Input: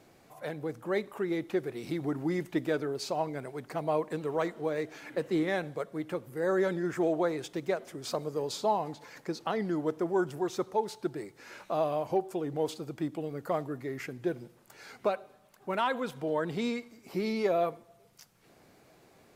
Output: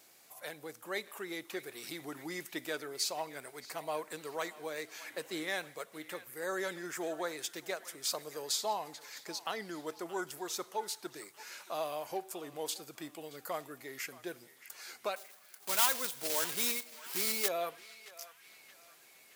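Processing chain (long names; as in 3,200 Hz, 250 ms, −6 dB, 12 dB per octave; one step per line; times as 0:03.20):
0:15.16–0:17.50: one scale factor per block 3 bits
spectral tilt +4.5 dB per octave
feedback echo with a band-pass in the loop 624 ms, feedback 59%, band-pass 2,000 Hz, level −14.5 dB
level −5 dB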